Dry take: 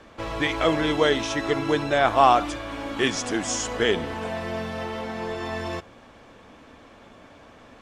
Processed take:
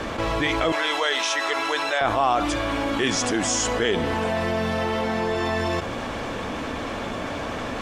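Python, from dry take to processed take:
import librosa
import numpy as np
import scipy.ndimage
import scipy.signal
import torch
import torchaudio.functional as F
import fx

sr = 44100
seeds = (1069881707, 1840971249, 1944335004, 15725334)

y = fx.highpass(x, sr, hz=800.0, slope=12, at=(0.72, 2.01))
y = fx.env_flatten(y, sr, amount_pct=70)
y = y * 10.0 ** (-5.5 / 20.0)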